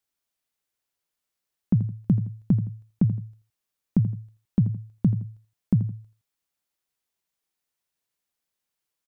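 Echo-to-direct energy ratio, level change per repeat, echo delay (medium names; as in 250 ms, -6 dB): -12.0 dB, -9.0 dB, 83 ms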